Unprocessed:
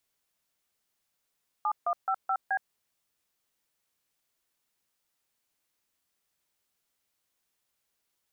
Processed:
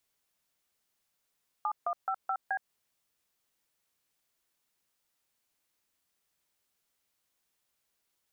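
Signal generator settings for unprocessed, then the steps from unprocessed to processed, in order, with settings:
DTMF "7155B", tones 67 ms, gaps 147 ms, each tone -27.5 dBFS
compression 4:1, threshold -30 dBFS

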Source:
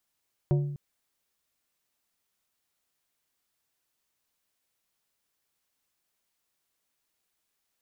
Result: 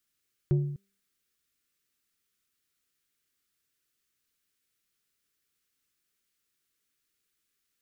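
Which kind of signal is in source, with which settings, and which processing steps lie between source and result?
glass hit plate, length 0.25 s, lowest mode 144 Hz, decay 0.89 s, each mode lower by 7 dB, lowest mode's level -19 dB
high-order bell 760 Hz -12.5 dB 1.1 oct; de-hum 197.3 Hz, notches 3

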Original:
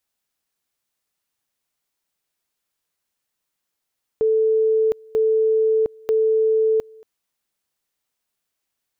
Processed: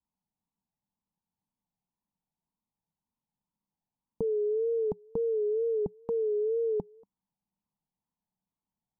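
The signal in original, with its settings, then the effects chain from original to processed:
two-level tone 440 Hz -14.5 dBFS, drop 27 dB, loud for 0.71 s, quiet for 0.23 s, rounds 3
FFT filter 120 Hz 0 dB, 190 Hz +9 dB, 360 Hz -10 dB, 610 Hz -12 dB, 910 Hz 0 dB, 1.5 kHz -28 dB; wow and flutter 89 cents

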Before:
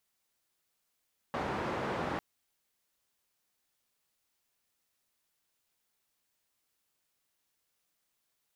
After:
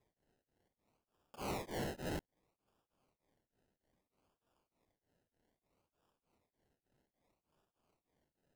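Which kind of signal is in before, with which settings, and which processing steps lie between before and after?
noise band 84–1000 Hz, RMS -35 dBFS 0.85 s
decimation with a swept rate 30×, swing 60% 0.62 Hz; hard clipper -36 dBFS; tremolo of two beating tones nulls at 3.3 Hz

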